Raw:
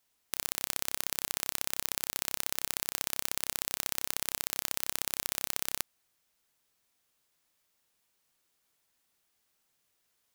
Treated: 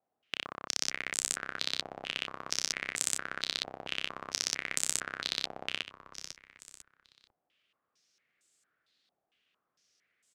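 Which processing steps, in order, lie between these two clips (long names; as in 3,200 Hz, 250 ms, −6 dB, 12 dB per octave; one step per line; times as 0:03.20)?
high-pass filter 120 Hz 12 dB per octave
parametric band 930 Hz −11.5 dB 0.39 octaves
echo with shifted repeats 498 ms, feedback 33%, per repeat −83 Hz, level −11.5 dB
low-pass on a step sequencer 4.4 Hz 790–7,800 Hz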